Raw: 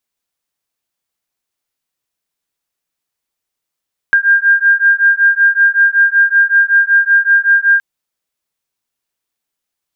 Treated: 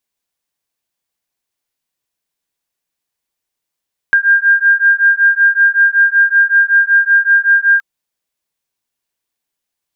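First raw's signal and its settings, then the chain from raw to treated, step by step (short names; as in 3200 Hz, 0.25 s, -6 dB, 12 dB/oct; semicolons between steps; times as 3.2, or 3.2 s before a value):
beating tones 1600 Hz, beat 5.3 Hz, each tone -10.5 dBFS 3.67 s
notch 1300 Hz, Q 14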